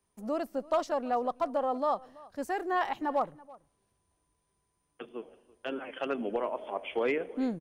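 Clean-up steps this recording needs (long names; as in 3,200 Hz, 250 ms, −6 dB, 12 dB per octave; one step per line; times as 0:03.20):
echo removal 331 ms −22 dB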